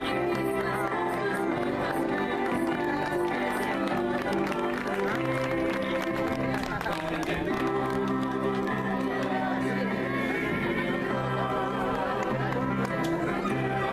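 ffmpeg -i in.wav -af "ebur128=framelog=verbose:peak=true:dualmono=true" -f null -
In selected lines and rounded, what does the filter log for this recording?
Integrated loudness:
  I:         -25.5 LUFS
  Threshold: -35.5 LUFS
Loudness range:
  LRA:         0.6 LU
  Threshold: -45.5 LUFS
  LRA low:   -25.9 LUFS
  LRA high:  -25.3 LUFS
True peak:
  Peak:      -14.2 dBFS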